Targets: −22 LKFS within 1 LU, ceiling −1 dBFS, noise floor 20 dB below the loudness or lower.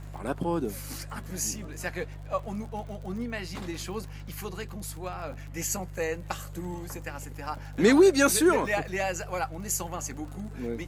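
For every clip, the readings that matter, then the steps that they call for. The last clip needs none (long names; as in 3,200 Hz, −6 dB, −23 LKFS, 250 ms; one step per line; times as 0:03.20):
crackle rate 43 per second; mains hum 50 Hz; hum harmonics up to 150 Hz; level of the hum −39 dBFS; integrated loudness −29.5 LKFS; sample peak −9.5 dBFS; target loudness −22.0 LKFS
→ click removal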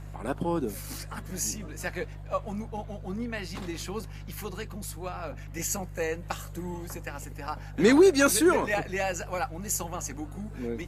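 crackle rate 0.18 per second; mains hum 50 Hz; hum harmonics up to 150 Hz; level of the hum −39 dBFS
→ hum removal 50 Hz, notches 3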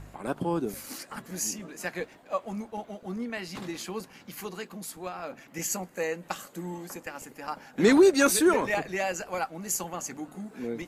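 mains hum none found; integrated loudness −29.0 LKFS; sample peak −10.0 dBFS; target loudness −22.0 LKFS
→ level +7 dB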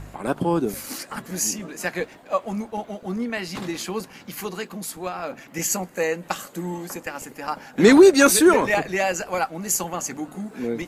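integrated loudness −22.0 LKFS; sample peak −3.0 dBFS; background noise floor −47 dBFS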